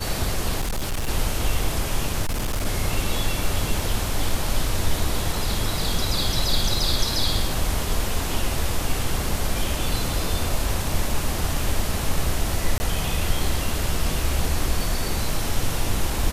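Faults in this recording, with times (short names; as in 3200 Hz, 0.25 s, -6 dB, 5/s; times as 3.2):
0.6–1.09 clipped -21.5 dBFS
2.22–2.66 clipped -20.5 dBFS
12.78–12.8 gap 20 ms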